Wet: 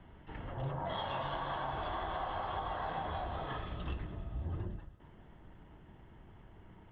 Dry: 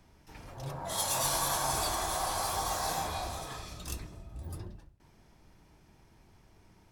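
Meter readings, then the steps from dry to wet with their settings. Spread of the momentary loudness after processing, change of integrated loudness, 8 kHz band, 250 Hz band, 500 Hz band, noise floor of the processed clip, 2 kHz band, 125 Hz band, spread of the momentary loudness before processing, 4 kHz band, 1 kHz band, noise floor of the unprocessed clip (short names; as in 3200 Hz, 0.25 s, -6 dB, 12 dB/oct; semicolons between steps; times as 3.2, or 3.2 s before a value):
20 LU, -6.5 dB, under -40 dB, 0.0 dB, -2.5 dB, -57 dBFS, -4.0 dB, +1.0 dB, 17 LU, -10.5 dB, -3.5 dB, -62 dBFS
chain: Chebyshev low-pass 3200 Hz, order 5; notch 2400 Hz, Q 5.8; compressor 12:1, threshold -39 dBFS, peak gain reduction 10.5 dB; on a send: thinning echo 0.103 s, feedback 80%, high-pass 200 Hz, level -19 dB; on the sum: gain +5.5 dB; Opus 48 kbps 48000 Hz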